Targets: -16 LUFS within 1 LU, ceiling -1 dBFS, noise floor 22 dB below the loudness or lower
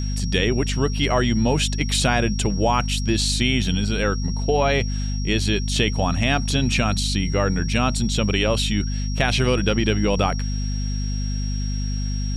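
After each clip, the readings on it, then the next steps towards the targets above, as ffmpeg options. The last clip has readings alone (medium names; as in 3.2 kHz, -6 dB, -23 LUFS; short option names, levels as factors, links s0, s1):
hum 50 Hz; highest harmonic 250 Hz; hum level -22 dBFS; steady tone 5.6 kHz; tone level -35 dBFS; loudness -21.5 LUFS; peak level -5.0 dBFS; loudness target -16.0 LUFS
-> -af "bandreject=f=50:t=h:w=4,bandreject=f=100:t=h:w=4,bandreject=f=150:t=h:w=4,bandreject=f=200:t=h:w=4,bandreject=f=250:t=h:w=4"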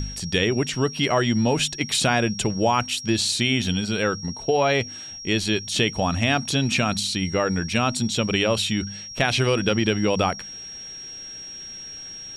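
hum not found; steady tone 5.6 kHz; tone level -35 dBFS
-> -af "bandreject=f=5600:w=30"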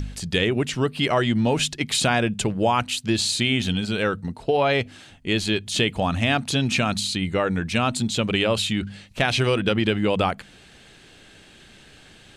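steady tone not found; loudness -22.5 LUFS; peak level -6.5 dBFS; loudness target -16.0 LUFS
-> -af "volume=2.11,alimiter=limit=0.891:level=0:latency=1"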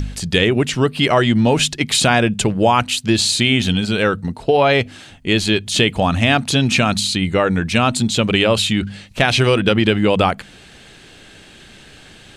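loudness -16.0 LUFS; peak level -1.0 dBFS; noise floor -43 dBFS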